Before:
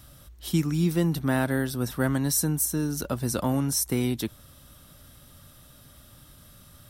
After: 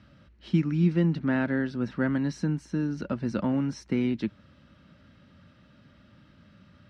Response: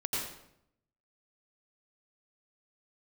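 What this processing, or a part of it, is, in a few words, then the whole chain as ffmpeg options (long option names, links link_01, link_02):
guitar cabinet: -af "highpass=98,equalizer=frequency=130:width_type=q:width=4:gain=-5,equalizer=frequency=200:width_type=q:width=4:gain=7,equalizer=frequency=440:width_type=q:width=4:gain=-4,equalizer=frequency=740:width_type=q:width=4:gain=-8,equalizer=frequency=1100:width_type=q:width=4:gain=-6,equalizer=frequency=3500:width_type=q:width=4:gain=-10,lowpass=frequency=3700:width=0.5412,lowpass=frequency=3700:width=1.3066"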